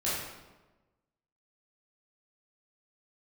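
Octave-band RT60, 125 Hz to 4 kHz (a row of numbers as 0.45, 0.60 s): 1.3, 1.3, 1.2, 1.1, 0.95, 0.80 s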